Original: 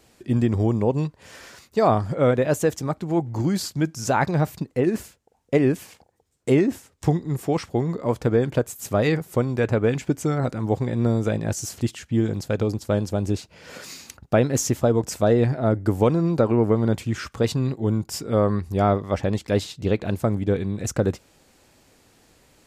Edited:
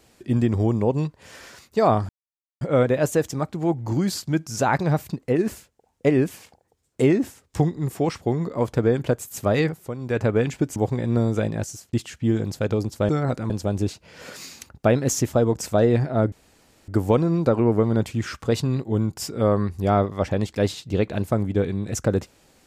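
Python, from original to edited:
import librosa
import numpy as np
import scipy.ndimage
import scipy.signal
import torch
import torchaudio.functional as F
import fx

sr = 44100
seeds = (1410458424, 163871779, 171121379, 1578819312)

y = fx.edit(x, sr, fx.insert_silence(at_s=2.09, length_s=0.52),
    fx.fade_down_up(start_s=9.11, length_s=0.59, db=-10.0, fade_s=0.27),
    fx.move(start_s=10.24, length_s=0.41, to_s=12.98),
    fx.fade_out_span(start_s=11.41, length_s=0.41),
    fx.insert_room_tone(at_s=15.8, length_s=0.56), tone=tone)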